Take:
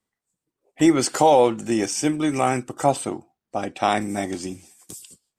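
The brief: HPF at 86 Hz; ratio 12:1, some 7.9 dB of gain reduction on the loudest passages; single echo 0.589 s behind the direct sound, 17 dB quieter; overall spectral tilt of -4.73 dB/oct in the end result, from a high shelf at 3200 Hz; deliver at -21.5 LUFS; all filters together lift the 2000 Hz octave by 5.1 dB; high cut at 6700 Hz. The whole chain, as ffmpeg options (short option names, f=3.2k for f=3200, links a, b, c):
-af "highpass=86,lowpass=6.7k,equalizer=f=2k:t=o:g=7.5,highshelf=f=3.2k:g=-4,acompressor=threshold=-18dB:ratio=12,aecho=1:1:589:0.141,volume=4.5dB"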